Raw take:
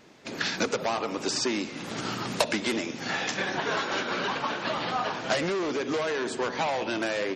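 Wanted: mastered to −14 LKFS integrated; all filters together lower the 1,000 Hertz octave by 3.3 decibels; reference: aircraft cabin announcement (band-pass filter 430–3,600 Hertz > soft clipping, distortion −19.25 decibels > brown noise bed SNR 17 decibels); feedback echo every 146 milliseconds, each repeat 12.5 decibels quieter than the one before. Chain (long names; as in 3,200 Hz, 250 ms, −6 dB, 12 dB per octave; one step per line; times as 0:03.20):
band-pass filter 430–3,600 Hz
parametric band 1,000 Hz −4 dB
repeating echo 146 ms, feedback 24%, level −12.5 dB
soft clipping −21 dBFS
brown noise bed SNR 17 dB
level +19 dB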